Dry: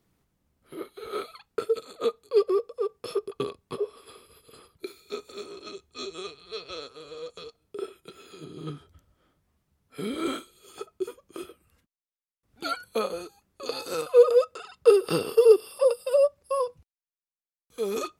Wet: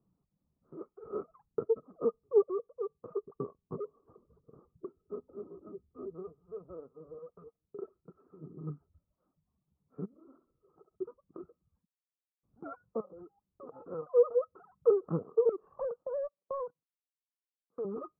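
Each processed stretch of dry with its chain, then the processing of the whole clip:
1.1–2.44 self-modulated delay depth 0.066 ms + low shelf 450 Hz +8 dB
3.62–7.19 tilt shelf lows +6.5 dB, about 920 Hz + notches 50/100/150/200/250 Hz + hard clip -26.5 dBFS
10.05–10.96 compressor 2.5:1, threshold -52 dBFS + air absorption 490 m + flutter echo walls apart 11.4 m, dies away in 0.58 s
13–13.82 LPF 1900 Hz + compressor 16:1, threshold -34 dBFS
15.49–17.85 HPF 340 Hz + sample leveller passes 3 + compressor 4:1, threshold -27 dBFS
whole clip: elliptic low-pass 1200 Hz, stop band 70 dB; reverb removal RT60 0.83 s; bell 170 Hz +9.5 dB 0.98 oct; gain -8.5 dB

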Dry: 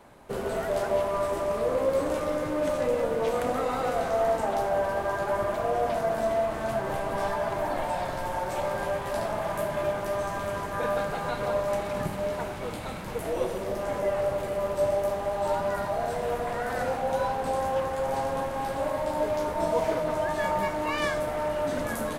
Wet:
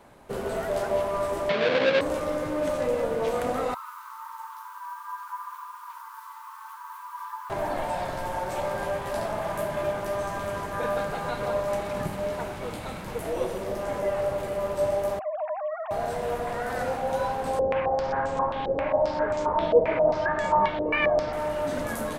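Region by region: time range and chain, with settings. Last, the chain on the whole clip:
1.49–2.01 half-waves squared off + Chebyshev band-pass 140–3900 Hz, order 3 + bell 2300 Hz +5 dB 0.28 oct
3.74–7.5 band shelf 3900 Hz -16 dB 2.9 oct + requantised 10-bit, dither triangular + brick-wall FIR high-pass 880 Hz
15.19–15.91 sine-wave speech + compressor 2.5:1, threshold -28 dBFS
17.59–21.33 air absorption 100 m + stepped low-pass 7.5 Hz 480–7600 Hz
whole clip: dry

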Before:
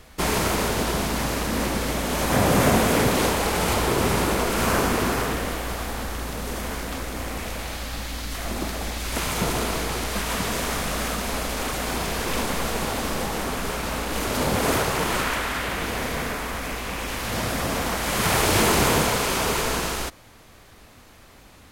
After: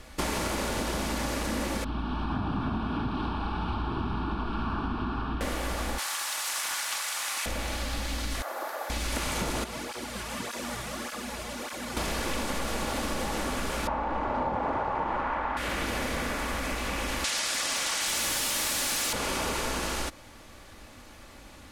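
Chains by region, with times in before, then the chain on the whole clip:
1.84–5.41 tape spacing loss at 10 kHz 32 dB + fixed phaser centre 2000 Hz, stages 6
5.98–7.46 HPF 850 Hz 24 dB/oct + high shelf 3400 Hz +10.5 dB + Doppler distortion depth 0.2 ms
8.42–8.9 HPF 520 Hz 24 dB/oct + band shelf 4600 Hz -12.5 dB 2.5 oct
9.64–11.97 resonator 120 Hz, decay 0.24 s, mix 70% + tape flanging out of phase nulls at 1.7 Hz, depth 4.2 ms
13.87–15.57 LPF 1700 Hz + bell 880 Hz +12 dB 0.82 oct
17.24–19.13 weighting filter ITU-R 468 + wrapped overs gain 13 dB
whole clip: LPF 12000 Hz 12 dB/oct; comb 3.5 ms, depth 34%; compressor, threshold -27 dBFS

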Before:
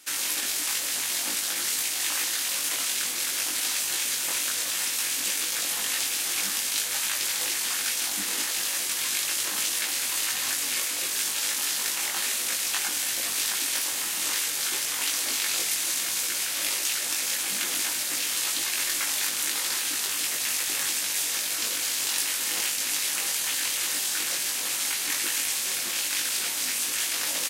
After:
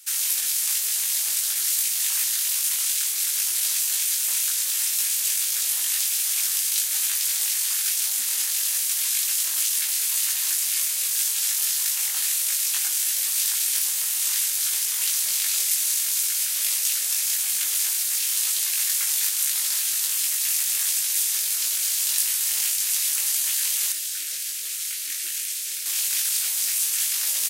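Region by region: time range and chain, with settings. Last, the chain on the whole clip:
23.92–25.86 high shelf 3700 Hz -6.5 dB + fixed phaser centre 350 Hz, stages 4
whole clip: HPF 68 Hz; tilt +4.5 dB/oct; gain -9 dB

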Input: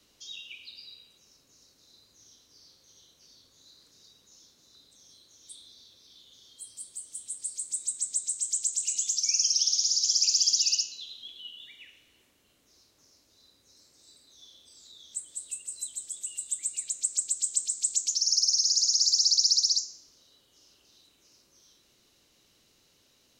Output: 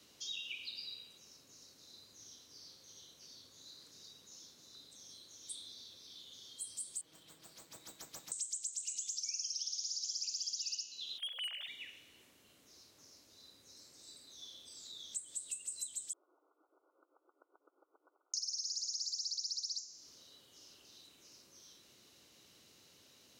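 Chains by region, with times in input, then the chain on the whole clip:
7.01–8.32 air absorption 240 m + comb 6.2 ms, depth 80% + running maximum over 3 samples
11.18–11.68 sine-wave speech + sample leveller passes 2 + bell 630 Hz +11.5 dB 0.63 oct
16.13–18.34 compressor 10:1, threshold -34 dBFS + hard clip -35.5 dBFS + brick-wall FIR band-pass 280–1500 Hz
whole clip: HPF 82 Hz; compressor 6:1, threshold -40 dBFS; gain +1.5 dB

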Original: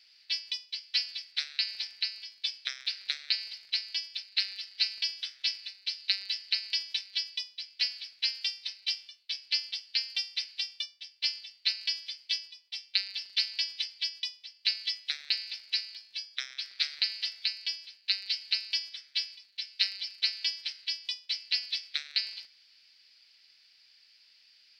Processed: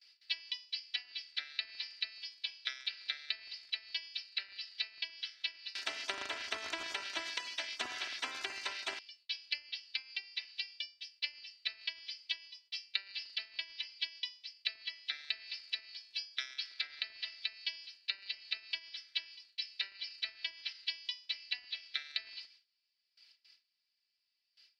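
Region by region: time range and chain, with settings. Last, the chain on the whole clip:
5.75–8.99 HPF 200 Hz 6 dB/oct + high shelf 7600 Hz +4 dB + spectral compressor 10:1
whole clip: gate with hold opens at -49 dBFS; treble ducked by the level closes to 1600 Hz, closed at -27 dBFS; comb 3 ms, depth 69%; gain -4 dB

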